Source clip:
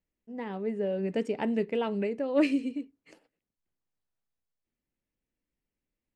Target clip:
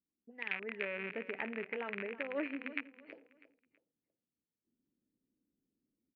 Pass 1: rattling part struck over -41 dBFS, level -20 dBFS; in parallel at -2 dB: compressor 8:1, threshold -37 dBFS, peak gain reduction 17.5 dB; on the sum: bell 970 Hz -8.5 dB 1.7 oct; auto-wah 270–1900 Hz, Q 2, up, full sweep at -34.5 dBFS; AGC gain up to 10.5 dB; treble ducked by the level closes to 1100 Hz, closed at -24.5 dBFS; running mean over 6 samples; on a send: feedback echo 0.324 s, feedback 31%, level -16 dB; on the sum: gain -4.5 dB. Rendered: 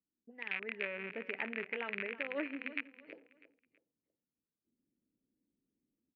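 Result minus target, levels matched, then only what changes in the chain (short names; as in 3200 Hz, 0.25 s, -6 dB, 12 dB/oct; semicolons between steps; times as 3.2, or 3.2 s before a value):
compressor: peak gain reduction +7.5 dB
change: compressor 8:1, threshold -28.5 dBFS, peak gain reduction 10 dB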